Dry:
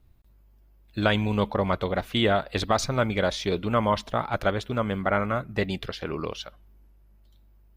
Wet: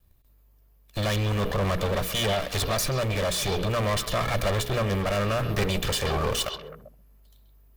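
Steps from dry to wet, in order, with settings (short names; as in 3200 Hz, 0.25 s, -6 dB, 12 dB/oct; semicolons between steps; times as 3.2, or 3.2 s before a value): minimum comb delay 1.7 ms; high shelf 7100 Hz +12 dB; notches 60/120/180/240/300/360/420/480 Hz; sample leveller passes 3; limiter -25.5 dBFS, peak gain reduction 15 dB; vocal rider; on a send: delay with a stepping band-pass 0.131 s, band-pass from 3400 Hz, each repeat -1.4 oct, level -7 dB; on the sum: gain +5.5 dB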